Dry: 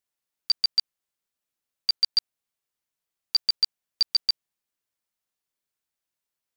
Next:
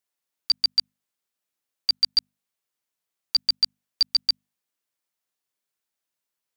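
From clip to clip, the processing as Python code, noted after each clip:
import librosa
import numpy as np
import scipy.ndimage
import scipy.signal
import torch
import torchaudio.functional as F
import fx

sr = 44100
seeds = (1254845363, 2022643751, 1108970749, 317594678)

y = fx.highpass(x, sr, hz=120.0, slope=6)
y = fx.hum_notches(y, sr, base_hz=50, count=5)
y = y * 10.0 ** (1.5 / 20.0)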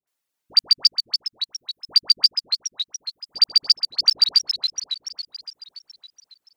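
y = fx.dereverb_blind(x, sr, rt60_s=1.4)
y = fx.dispersion(y, sr, late='highs', ms=74.0, hz=1000.0)
y = fx.echo_warbled(y, sr, ms=280, feedback_pct=61, rate_hz=2.8, cents=218, wet_db=-8.0)
y = y * 10.0 ** (5.5 / 20.0)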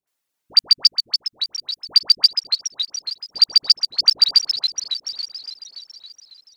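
y = fx.echo_feedback(x, sr, ms=870, feedback_pct=23, wet_db=-17.5)
y = y * 10.0 ** (2.5 / 20.0)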